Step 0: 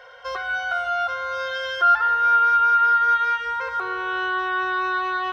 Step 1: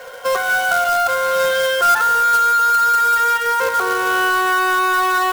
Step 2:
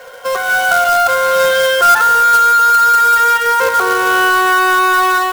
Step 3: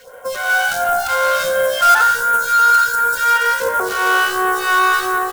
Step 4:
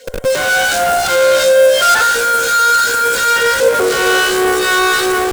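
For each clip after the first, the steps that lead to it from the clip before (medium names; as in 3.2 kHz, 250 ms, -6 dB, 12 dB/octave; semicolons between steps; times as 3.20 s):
resonant low shelf 300 Hz -14 dB, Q 3; in parallel at -0.5 dB: compressor with a negative ratio -23 dBFS, ratio -1; on the sum: companded quantiser 4-bit
level rider
phase shifter stages 2, 1.4 Hz, lowest notch 100–4600 Hz; on a send: frequency-shifting echo 89 ms, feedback 50%, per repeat +64 Hz, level -12 dB; on the sum: trim -3 dB
ten-band graphic EQ 125 Hz -9 dB, 250 Hz +9 dB, 500 Hz +11 dB, 1 kHz -6 dB, 2 kHz +4 dB, 4 kHz +7 dB, 8 kHz +9 dB; in parallel at -4.5 dB: Schmitt trigger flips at -23 dBFS; on the sum: trim -4 dB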